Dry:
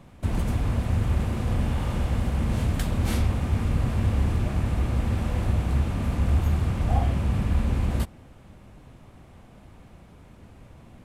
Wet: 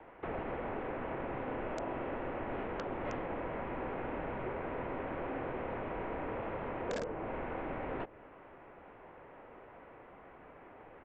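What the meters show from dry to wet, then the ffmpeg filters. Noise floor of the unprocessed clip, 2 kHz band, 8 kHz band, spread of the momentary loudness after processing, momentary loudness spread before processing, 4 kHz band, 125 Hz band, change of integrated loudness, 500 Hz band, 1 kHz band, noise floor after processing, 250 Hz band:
-50 dBFS, -4.5 dB, under -15 dB, 16 LU, 3 LU, -15.5 dB, -25.0 dB, -13.5 dB, -1.0 dB, -3.0 dB, -55 dBFS, -12.0 dB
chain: -filter_complex "[0:a]acrossover=split=580 2100:gain=0.126 1 0.2[s0][s1][s2];[s0][s1][s2]amix=inputs=3:normalize=0,highpass=f=240:t=q:w=0.5412,highpass=f=240:t=q:w=1.307,lowpass=f=3100:t=q:w=0.5176,lowpass=f=3100:t=q:w=0.7071,lowpass=f=3100:t=q:w=1.932,afreqshift=-230,aresample=16000,aeval=exprs='(mod(25.1*val(0)+1,2)-1)/25.1':c=same,aresample=44100,acrossover=split=710|1500[s3][s4][s5];[s3]acompressor=threshold=0.00708:ratio=4[s6];[s4]acompressor=threshold=0.00141:ratio=4[s7];[s5]acompressor=threshold=0.00126:ratio=4[s8];[s6][s7][s8]amix=inputs=3:normalize=0,volume=2.24"

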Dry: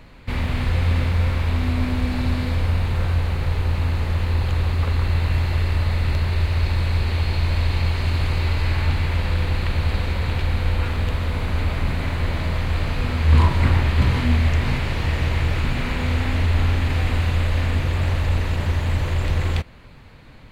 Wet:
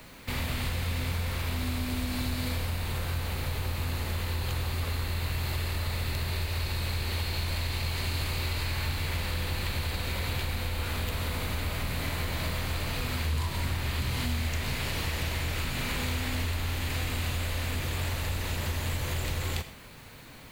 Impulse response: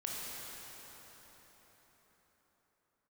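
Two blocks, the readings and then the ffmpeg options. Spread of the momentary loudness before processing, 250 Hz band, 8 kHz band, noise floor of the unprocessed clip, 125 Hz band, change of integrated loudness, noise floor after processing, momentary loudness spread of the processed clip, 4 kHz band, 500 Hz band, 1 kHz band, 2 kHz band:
5 LU, -9.5 dB, no reading, -42 dBFS, -11.5 dB, -9.5 dB, -46 dBFS, 2 LU, -1.5 dB, -8.0 dB, -7.5 dB, -5.5 dB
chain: -filter_complex "[0:a]aemphasis=mode=production:type=50fm,acrossover=split=130|3100[s0][s1][s2];[s1]asoftclip=type=tanh:threshold=0.0376[s3];[s0][s3][s2]amix=inputs=3:normalize=0,acrusher=bits=8:mix=0:aa=0.000001,acompressor=threshold=0.0708:ratio=2.5,lowshelf=f=110:g=-9.5,asplit=2[s4][s5];[1:a]atrim=start_sample=2205,atrim=end_sample=6174[s6];[s5][s6]afir=irnorm=-1:irlink=0,volume=0.708[s7];[s4][s7]amix=inputs=2:normalize=0,volume=0.631"

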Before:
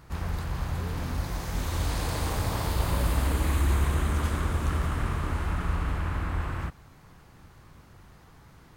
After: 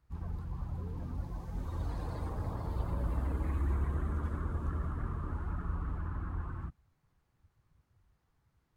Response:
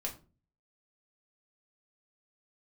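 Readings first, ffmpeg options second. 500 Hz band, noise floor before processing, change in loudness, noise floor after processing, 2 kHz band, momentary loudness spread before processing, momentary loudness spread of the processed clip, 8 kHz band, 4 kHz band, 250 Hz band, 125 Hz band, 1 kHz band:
-10.0 dB, -53 dBFS, -8.0 dB, -77 dBFS, -16.0 dB, 7 LU, 7 LU, under -25 dB, -24.0 dB, -7.5 dB, -7.5 dB, -11.0 dB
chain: -filter_complex "[0:a]afftdn=nr=17:nf=-34,acrossover=split=480[s0][s1];[s1]acompressor=threshold=0.0141:ratio=6[s2];[s0][s2]amix=inputs=2:normalize=0,volume=0.422"

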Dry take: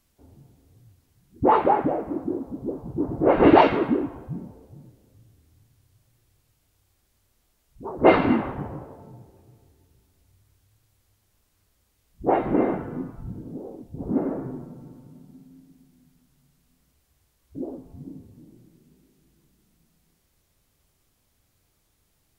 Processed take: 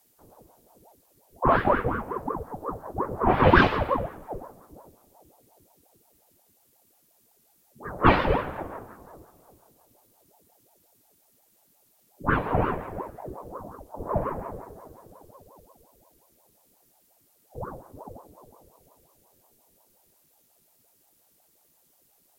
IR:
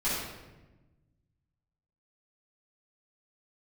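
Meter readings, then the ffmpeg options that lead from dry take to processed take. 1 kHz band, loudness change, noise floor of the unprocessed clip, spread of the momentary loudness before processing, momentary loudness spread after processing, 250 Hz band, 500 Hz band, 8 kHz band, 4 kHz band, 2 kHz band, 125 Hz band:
-1.5 dB, -3.0 dB, -69 dBFS, 22 LU, 22 LU, -6.5 dB, -4.5 dB, no reading, +2.0 dB, +4.5 dB, +3.0 dB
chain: -af "aemphasis=mode=production:type=50kf,aeval=exprs='val(0)*sin(2*PI*500*n/s+500*0.65/5.6*sin(2*PI*5.6*n/s))':c=same"

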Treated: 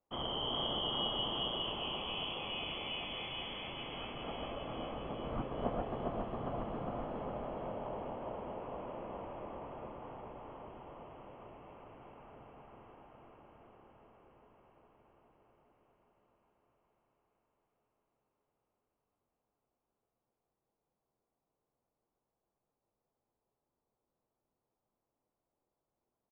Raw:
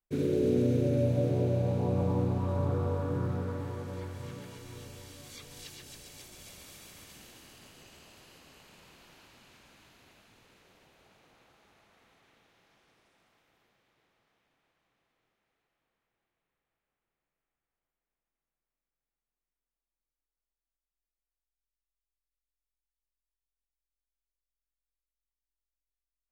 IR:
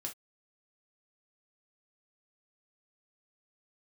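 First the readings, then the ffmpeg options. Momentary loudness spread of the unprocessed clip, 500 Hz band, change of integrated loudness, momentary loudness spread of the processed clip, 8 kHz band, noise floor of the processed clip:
21 LU, -7.0 dB, -9.5 dB, 20 LU, under -25 dB, under -85 dBFS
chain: -filter_complex "[0:a]equalizer=f=2000:w=1.6:g=-6.5,acrossover=split=1600[s0][s1];[s1]aexciter=amount=15.1:drive=4.6:freq=2500[s2];[s0][s2]amix=inputs=2:normalize=0,aderivative,aecho=1:1:407|814|1221|1628|2035|2442|2849|3256:0.631|0.372|0.22|0.13|0.0765|0.0451|0.0266|0.0157,asplit=2[s3][s4];[1:a]atrim=start_sample=2205[s5];[s4][s5]afir=irnorm=-1:irlink=0,volume=0.708[s6];[s3][s6]amix=inputs=2:normalize=0,lowpass=f=3000:t=q:w=0.5098,lowpass=f=3000:t=q:w=0.6013,lowpass=f=3000:t=q:w=0.9,lowpass=f=3000:t=q:w=2.563,afreqshift=-3500,volume=2.82"

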